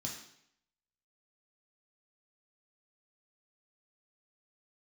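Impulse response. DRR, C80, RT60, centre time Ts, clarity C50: -2.0 dB, 8.0 dB, 0.70 s, 34 ms, 5.0 dB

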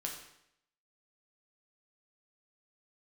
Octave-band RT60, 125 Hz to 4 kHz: 0.75, 0.75, 0.75, 0.75, 0.75, 0.70 s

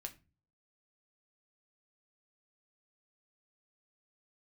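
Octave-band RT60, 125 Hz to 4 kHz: 0.65, 0.55, 0.35, 0.30, 0.25, 0.25 s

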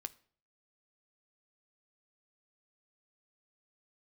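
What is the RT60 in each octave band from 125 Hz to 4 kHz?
0.65, 0.55, 0.55, 0.50, 0.45, 0.40 s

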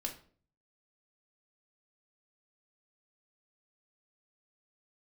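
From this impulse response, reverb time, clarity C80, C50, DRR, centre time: 0.45 s, 16.0 dB, 10.5 dB, 1.0 dB, 15 ms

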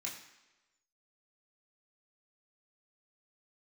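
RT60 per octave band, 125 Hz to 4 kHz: 0.85, 0.95, 1.1, 1.1, 1.1, 1.0 s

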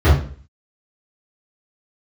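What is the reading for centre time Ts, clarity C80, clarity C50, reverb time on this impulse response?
44 ms, 9.5 dB, 3.5 dB, 0.45 s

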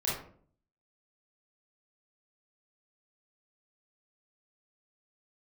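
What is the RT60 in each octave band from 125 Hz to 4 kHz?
0.75, 0.70, 0.60, 0.45, 0.40, 0.30 s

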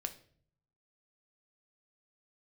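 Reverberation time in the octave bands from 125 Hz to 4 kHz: 1.1, 0.80, 0.65, 0.45, 0.45, 0.40 s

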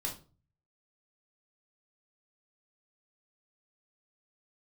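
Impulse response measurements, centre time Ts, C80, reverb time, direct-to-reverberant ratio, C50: 20 ms, 16.0 dB, 0.35 s, -1.5 dB, 9.5 dB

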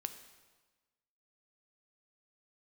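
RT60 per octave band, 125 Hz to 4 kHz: 1.4, 1.3, 1.3, 1.3, 1.2, 1.2 s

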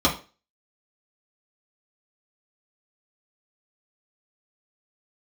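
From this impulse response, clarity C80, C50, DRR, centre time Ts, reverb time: 16.5 dB, 10.5 dB, -4.5 dB, 19 ms, 0.35 s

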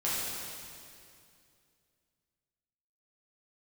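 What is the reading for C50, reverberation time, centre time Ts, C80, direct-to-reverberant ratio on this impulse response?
-3.0 dB, 2.4 s, 0.154 s, -1.0 dB, -9.0 dB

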